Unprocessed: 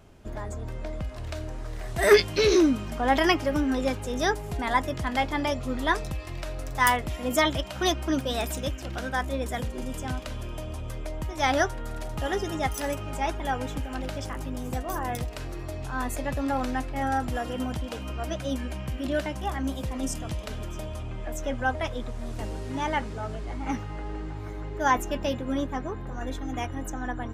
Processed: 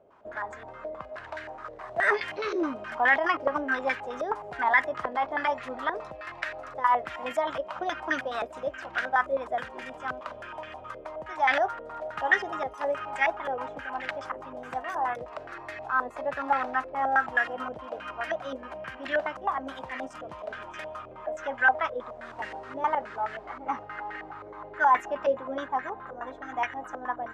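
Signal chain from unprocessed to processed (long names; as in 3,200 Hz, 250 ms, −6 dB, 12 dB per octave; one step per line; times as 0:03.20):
first difference
in parallel at −1.5 dB: compressor whose output falls as the input rises −41 dBFS, ratio −0.5
on the sum: boost into a limiter +9.5 dB
low-pass on a step sequencer 9.5 Hz 550–1,800 Hz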